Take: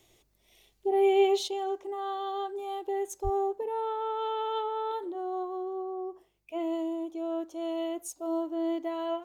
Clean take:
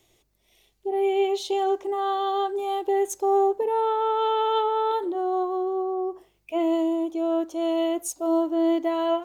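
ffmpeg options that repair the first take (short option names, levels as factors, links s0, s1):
-filter_complex "[0:a]asplit=3[s0][s1][s2];[s0]afade=t=out:st=3.23:d=0.02[s3];[s1]highpass=f=140:w=0.5412,highpass=f=140:w=1.3066,afade=t=in:st=3.23:d=0.02,afade=t=out:st=3.35:d=0.02[s4];[s2]afade=t=in:st=3.35:d=0.02[s5];[s3][s4][s5]amix=inputs=3:normalize=0,asetnsamples=n=441:p=0,asendcmd='1.48 volume volume 8.5dB',volume=1"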